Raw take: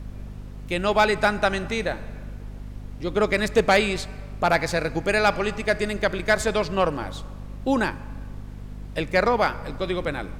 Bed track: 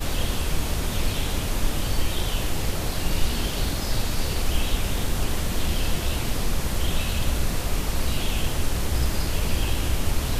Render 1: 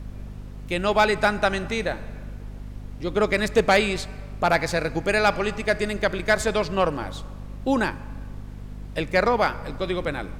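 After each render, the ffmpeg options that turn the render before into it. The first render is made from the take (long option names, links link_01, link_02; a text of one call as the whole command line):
ffmpeg -i in.wav -af anull out.wav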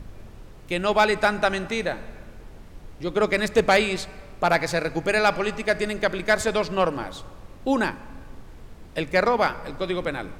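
ffmpeg -i in.wav -af "bandreject=frequency=50:width_type=h:width=6,bandreject=frequency=100:width_type=h:width=6,bandreject=frequency=150:width_type=h:width=6,bandreject=frequency=200:width_type=h:width=6,bandreject=frequency=250:width_type=h:width=6" out.wav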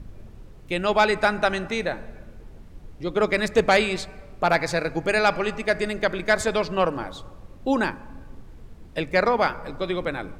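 ffmpeg -i in.wav -af "afftdn=noise_reduction=6:noise_floor=-44" out.wav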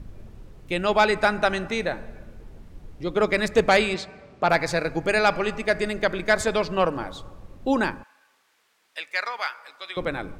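ffmpeg -i in.wav -filter_complex "[0:a]asettb=1/sr,asplit=3[link_01][link_02][link_03];[link_01]atrim=end=3.944[link_04];[link_02]atrim=start=3.94:end=4.49,asetpts=PTS-STARTPTS,afade=type=in:duration=0.004:curve=qsin,afade=type=out:start_time=0.546:duration=0.004:curve=qsin,highpass=120,lowpass=6100[link_05];[link_03]atrim=start=4.486[link_06];[link_04][link_05]acrossfade=duration=0.004:curve1=hsin:curve2=qsin[link_07];[link_07][link_06]acrossfade=duration=0.004:curve1=qsin:curve2=hsin,asettb=1/sr,asplit=3[link_08][link_09][link_10];[link_08]atrim=end=8.034[link_11];[link_09]atrim=start=8.03:end=9.97,asetpts=PTS-STARTPTS,afade=type=in:duration=0.004:curve=qsin,afade=type=out:start_time=1.936:duration=0.004:curve=qsin,highpass=1500[link_12];[link_10]atrim=start=9.966[link_13];[link_11][link_12]acrossfade=duration=0.004:curve1=hsin:curve2=qsin[link_14];[link_14][link_13]acrossfade=duration=0.004:curve1=qsin:curve2=hsin" out.wav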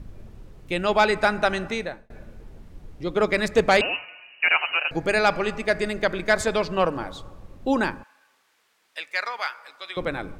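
ffmpeg -i in.wav -filter_complex "[0:a]asettb=1/sr,asplit=3[link_01][link_02][link_03];[link_01]atrim=end=3.814[link_04];[link_02]atrim=start=3.81:end=4.91,asetpts=PTS-STARTPTS,afade=type=in:duration=0.004:curve=qsin,afade=type=out:start_time=1.096:duration=0.004:curve=qsin,lowpass=frequency=2600:width_type=q:width=0.5098,lowpass=frequency=2600:width_type=q:width=0.6013,lowpass=frequency=2600:width_type=q:width=0.9,lowpass=frequency=2600:width_type=q:width=2.563,afreqshift=-3000[link_05];[link_03]atrim=start=4.906[link_06];[link_04][link_05]acrossfade=duration=0.004:curve1=hsin:curve2=qsin[link_07];[link_07][link_06]acrossfade=duration=0.004:curve1=qsin:curve2=hsin,asplit=2[link_08][link_09];[link_08]atrim=end=2.1,asetpts=PTS-STARTPTS,afade=type=out:start_time=1.7:duration=0.4[link_10];[link_09]atrim=start=2.1,asetpts=PTS-STARTPTS,afade=type=in:duration=0.004:curve=hsin[link_11];[link_10][link_11]concat=n=2:v=0:a=1" out.wav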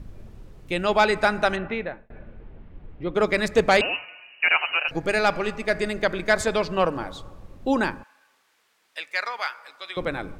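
ffmpeg -i in.wav -filter_complex "[0:a]asplit=3[link_01][link_02][link_03];[link_01]afade=type=out:start_time=1.55:duration=0.02[link_04];[link_02]lowpass=frequency=3000:width=0.5412,lowpass=frequency=3000:width=1.3066,afade=type=in:start_time=1.55:duration=0.02,afade=type=out:start_time=3.14:duration=0.02[link_05];[link_03]afade=type=in:start_time=3.14:duration=0.02[link_06];[link_04][link_05][link_06]amix=inputs=3:normalize=0,asettb=1/sr,asplit=3[link_07][link_08][link_09];[link_07]atrim=end=4.884[link_10];[link_08]atrim=start=4.88:end=5.73,asetpts=PTS-STARTPTS,afade=type=in:duration=0.004:curve=qsin,afade=type=out:start_time=0.846:duration=0.004:curve=qsin,aeval=exprs='if(lt(val(0),0),0.708*val(0),val(0))':channel_layout=same[link_11];[link_09]atrim=start=5.726[link_12];[link_10][link_11]acrossfade=duration=0.004:curve1=hsin:curve2=qsin[link_13];[link_13][link_12]acrossfade=duration=0.004:curve1=qsin:curve2=hsin" out.wav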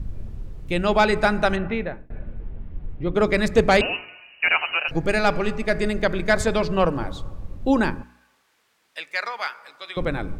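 ffmpeg -i in.wav -af "lowshelf=frequency=210:gain=11.5,bandreject=frequency=60.87:width_type=h:width=4,bandreject=frequency=121.74:width_type=h:width=4,bandreject=frequency=182.61:width_type=h:width=4,bandreject=frequency=243.48:width_type=h:width=4,bandreject=frequency=304.35:width_type=h:width=4,bandreject=frequency=365.22:width_type=h:width=4,bandreject=frequency=426.09:width_type=h:width=4" out.wav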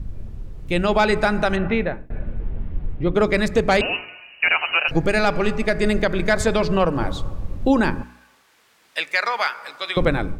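ffmpeg -i in.wav -af "dynaudnorm=framelen=530:gausssize=3:maxgain=11.5dB,alimiter=limit=-7.5dB:level=0:latency=1:release=216" out.wav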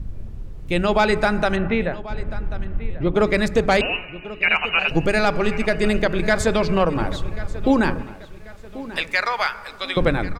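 ffmpeg -i in.wav -filter_complex "[0:a]asplit=2[link_01][link_02];[link_02]adelay=1088,lowpass=frequency=4700:poles=1,volume=-16dB,asplit=2[link_03][link_04];[link_04]adelay=1088,lowpass=frequency=4700:poles=1,volume=0.41,asplit=2[link_05][link_06];[link_06]adelay=1088,lowpass=frequency=4700:poles=1,volume=0.41,asplit=2[link_07][link_08];[link_08]adelay=1088,lowpass=frequency=4700:poles=1,volume=0.41[link_09];[link_01][link_03][link_05][link_07][link_09]amix=inputs=5:normalize=0" out.wav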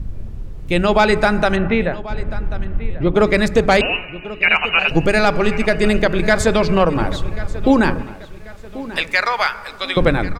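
ffmpeg -i in.wav -af "volume=4dB" out.wav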